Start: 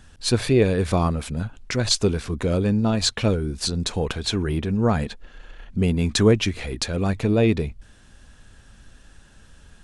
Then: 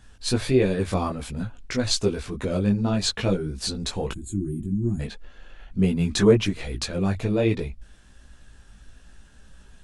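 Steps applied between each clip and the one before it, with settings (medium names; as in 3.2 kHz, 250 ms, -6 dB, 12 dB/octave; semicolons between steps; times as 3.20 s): time-frequency box 4.12–5.00 s, 380–6600 Hz -28 dB; chorus voices 6, 1.3 Hz, delay 18 ms, depth 3 ms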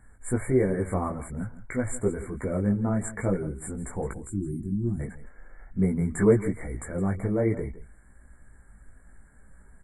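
brick-wall FIR band-stop 2.3–7.1 kHz; delay 164 ms -15.5 dB; trim -3 dB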